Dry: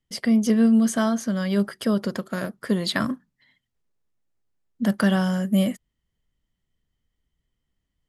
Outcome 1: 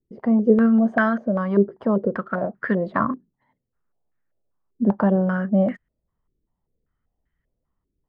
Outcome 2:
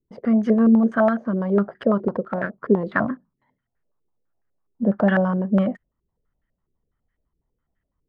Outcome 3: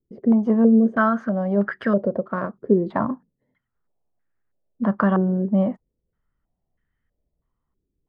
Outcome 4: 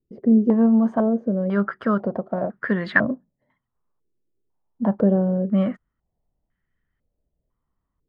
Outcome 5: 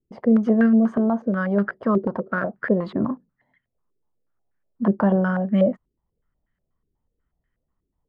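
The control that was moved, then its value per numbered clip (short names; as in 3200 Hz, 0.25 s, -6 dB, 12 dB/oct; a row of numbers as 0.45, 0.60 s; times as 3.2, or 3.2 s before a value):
stepped low-pass, rate: 5.1, 12, 3.1, 2, 8.2 Hz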